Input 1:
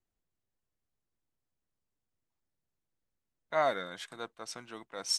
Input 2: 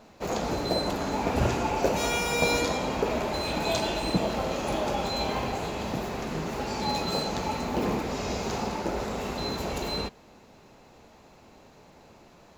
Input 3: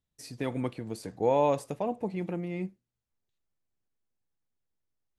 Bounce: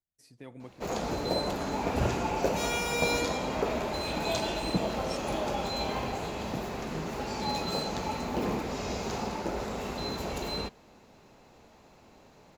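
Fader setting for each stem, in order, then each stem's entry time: -13.0, -3.0, -14.0 dB; 0.00, 0.60, 0.00 s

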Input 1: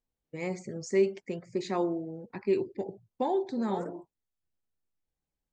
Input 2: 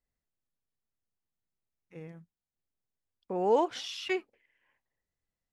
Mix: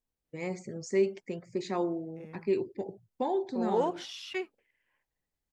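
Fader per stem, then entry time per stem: -1.5, -3.5 dB; 0.00, 0.25 s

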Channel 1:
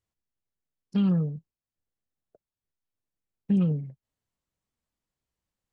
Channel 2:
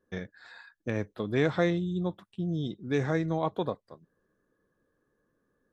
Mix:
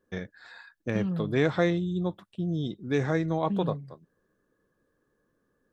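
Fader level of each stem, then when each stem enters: -7.0, +1.5 dB; 0.00, 0.00 s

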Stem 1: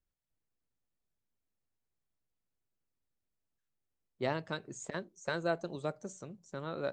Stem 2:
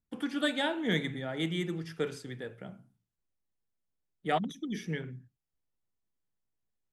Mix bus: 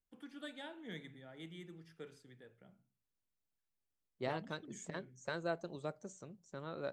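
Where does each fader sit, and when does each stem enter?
-5.5, -18.0 dB; 0.00, 0.00 s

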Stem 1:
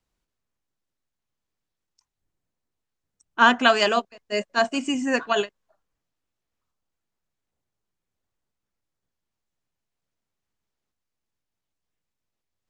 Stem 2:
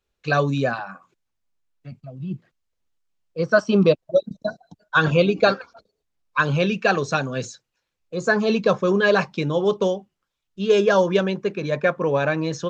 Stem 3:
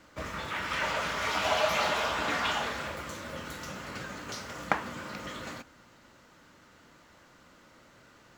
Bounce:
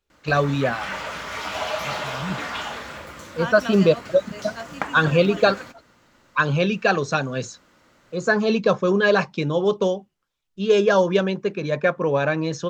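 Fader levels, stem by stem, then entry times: -14.5, 0.0, 0.0 dB; 0.00, 0.00, 0.10 s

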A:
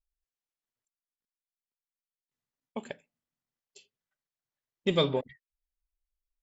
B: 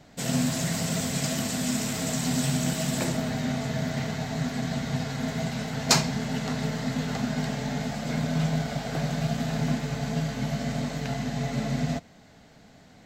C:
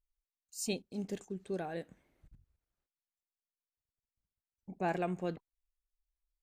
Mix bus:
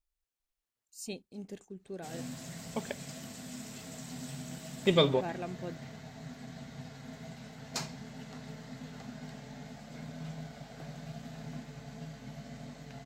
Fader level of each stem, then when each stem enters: +1.0, -16.5, -5.0 dB; 0.00, 1.85, 0.40 s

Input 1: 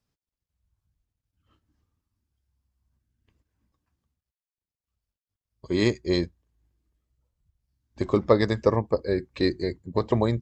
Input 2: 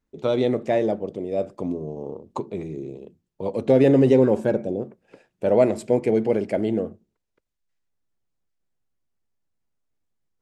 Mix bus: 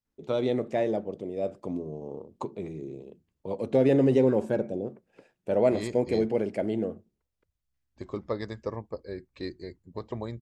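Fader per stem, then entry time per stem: -12.5, -5.5 dB; 0.00, 0.05 s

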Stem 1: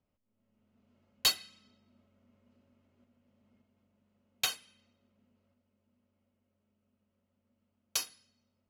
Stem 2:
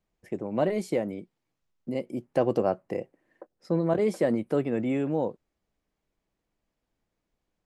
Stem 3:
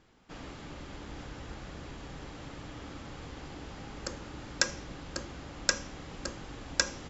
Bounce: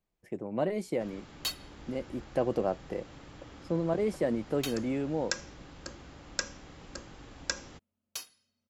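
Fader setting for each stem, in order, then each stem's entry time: -7.0, -4.5, -5.5 dB; 0.20, 0.00, 0.70 s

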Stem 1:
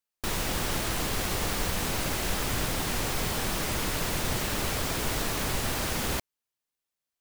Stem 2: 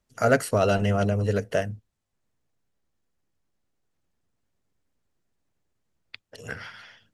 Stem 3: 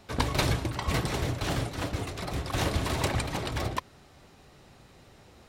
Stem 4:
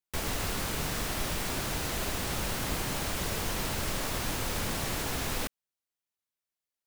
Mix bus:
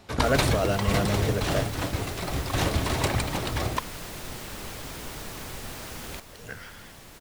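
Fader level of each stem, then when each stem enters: -9.0, -4.5, +2.5, -15.0 dB; 0.00, 0.00, 0.00, 2.15 s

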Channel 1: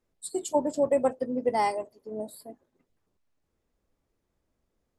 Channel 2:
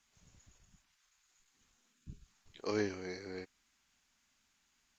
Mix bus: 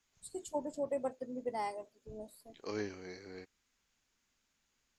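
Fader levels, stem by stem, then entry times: -12.0, -4.5 dB; 0.00, 0.00 s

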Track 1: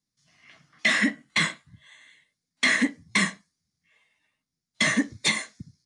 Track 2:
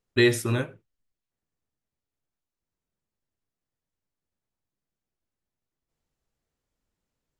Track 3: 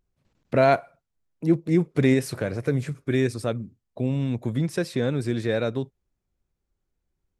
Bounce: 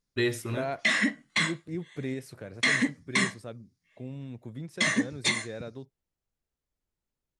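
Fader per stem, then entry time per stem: -3.0, -7.5, -14.5 dB; 0.00, 0.00, 0.00 s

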